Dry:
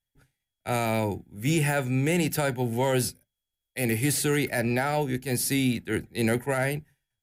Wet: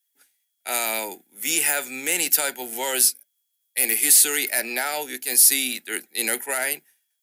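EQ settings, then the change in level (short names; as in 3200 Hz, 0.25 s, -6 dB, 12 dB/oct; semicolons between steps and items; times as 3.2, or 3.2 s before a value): HPF 230 Hz 24 dB/oct; tilt +4.5 dB/oct; 0.0 dB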